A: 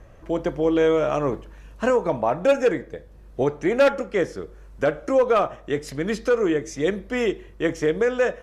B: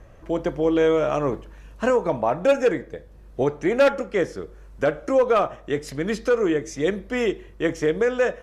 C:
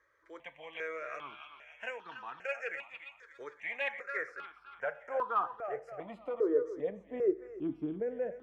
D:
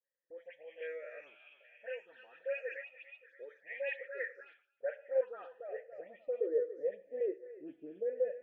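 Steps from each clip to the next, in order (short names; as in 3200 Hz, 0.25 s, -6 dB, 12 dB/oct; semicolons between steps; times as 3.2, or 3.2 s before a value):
nothing audible
thinning echo 0.286 s, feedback 61%, high-pass 990 Hz, level -7 dB; band-pass sweep 2300 Hz -> 290 Hz, 3.67–7.65; step phaser 2.5 Hz 730–2200 Hz; gain -2 dB
vowel filter e; gate with hold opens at -59 dBFS; dispersion highs, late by 0.11 s, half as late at 2400 Hz; gain +4.5 dB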